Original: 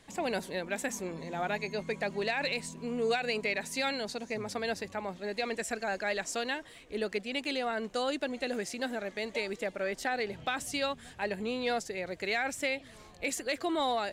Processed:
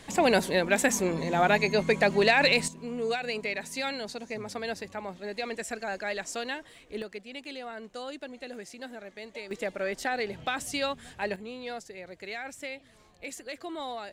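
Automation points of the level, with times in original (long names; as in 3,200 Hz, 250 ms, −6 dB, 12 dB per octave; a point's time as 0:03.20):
+10 dB
from 0:02.68 −0.5 dB
from 0:07.02 −7 dB
from 0:09.51 +2 dB
from 0:11.36 −6.5 dB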